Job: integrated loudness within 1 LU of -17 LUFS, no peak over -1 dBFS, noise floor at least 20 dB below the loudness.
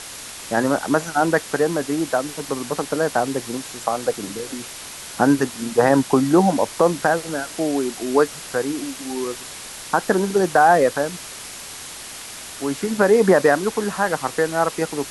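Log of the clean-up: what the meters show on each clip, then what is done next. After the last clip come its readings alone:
noise floor -36 dBFS; noise floor target -41 dBFS; loudness -20.5 LUFS; peak level -2.0 dBFS; loudness target -17.0 LUFS
-> noise reduction 6 dB, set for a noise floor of -36 dBFS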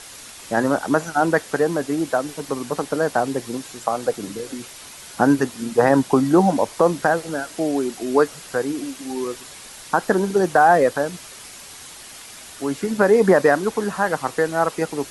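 noise floor -40 dBFS; noise floor target -41 dBFS
-> noise reduction 6 dB, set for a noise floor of -40 dBFS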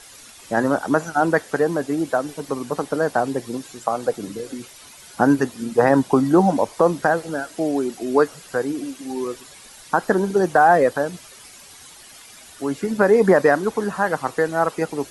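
noise floor -44 dBFS; loudness -20.5 LUFS; peak level -2.0 dBFS; loudness target -17.0 LUFS
-> trim +3.5 dB; peak limiter -1 dBFS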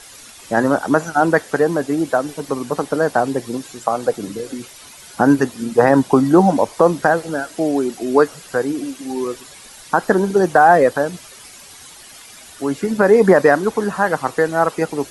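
loudness -17.0 LUFS; peak level -1.0 dBFS; noise floor -41 dBFS

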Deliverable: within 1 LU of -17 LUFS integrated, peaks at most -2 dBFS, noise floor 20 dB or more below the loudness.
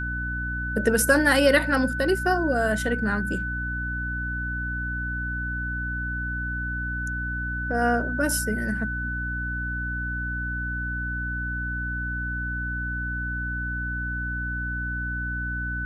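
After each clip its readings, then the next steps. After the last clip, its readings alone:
hum 60 Hz; highest harmonic 300 Hz; hum level -29 dBFS; steady tone 1.5 kHz; tone level -29 dBFS; loudness -26.5 LUFS; peak level -7.0 dBFS; loudness target -17.0 LUFS
-> hum notches 60/120/180/240/300 Hz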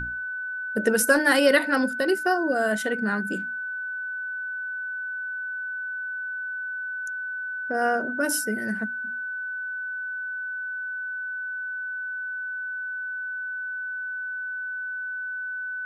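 hum not found; steady tone 1.5 kHz; tone level -29 dBFS
-> band-stop 1.5 kHz, Q 30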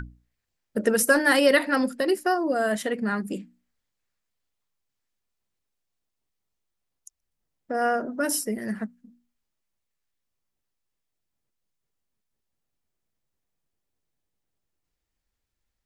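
steady tone not found; loudness -24.0 LUFS; peak level -8.0 dBFS; loudness target -17.0 LUFS
-> trim +7 dB; peak limiter -2 dBFS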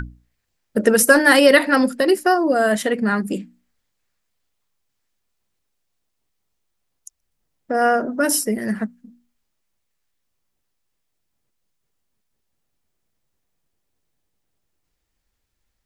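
loudness -17.0 LUFS; peak level -2.0 dBFS; noise floor -75 dBFS

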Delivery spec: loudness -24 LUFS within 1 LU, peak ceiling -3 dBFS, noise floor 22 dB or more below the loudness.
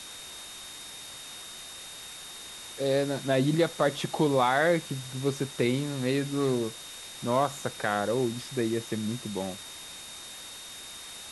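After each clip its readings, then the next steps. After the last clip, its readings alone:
steady tone 3.7 kHz; tone level -45 dBFS; noise floor -44 dBFS; noise floor target -52 dBFS; loudness -29.5 LUFS; peak level -12.0 dBFS; loudness target -24.0 LUFS
-> band-stop 3.7 kHz, Q 30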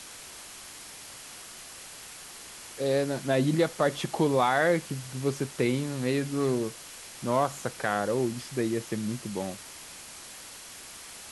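steady tone not found; noise floor -45 dBFS; noise floor target -51 dBFS
-> noise reduction 6 dB, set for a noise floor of -45 dBFS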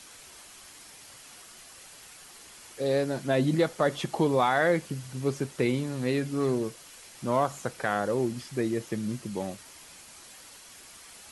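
noise floor -50 dBFS; noise floor target -51 dBFS
-> noise reduction 6 dB, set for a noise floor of -50 dBFS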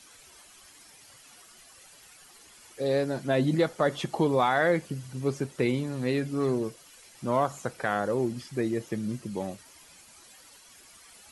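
noise floor -54 dBFS; loudness -28.5 LUFS; peak level -12.5 dBFS; loudness target -24.0 LUFS
-> trim +4.5 dB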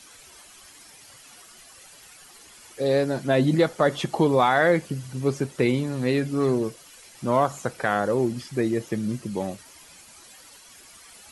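loudness -24.0 LUFS; peak level -8.0 dBFS; noise floor -50 dBFS

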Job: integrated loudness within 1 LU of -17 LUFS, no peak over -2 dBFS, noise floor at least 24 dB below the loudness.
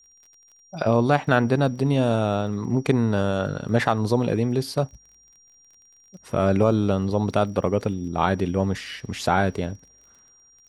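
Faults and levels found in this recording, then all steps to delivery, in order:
tick rate 26 per s; steady tone 5.7 kHz; tone level -53 dBFS; loudness -23.0 LUFS; peak level -4.0 dBFS; loudness target -17.0 LUFS
-> de-click; band-stop 5.7 kHz, Q 30; trim +6 dB; peak limiter -2 dBFS

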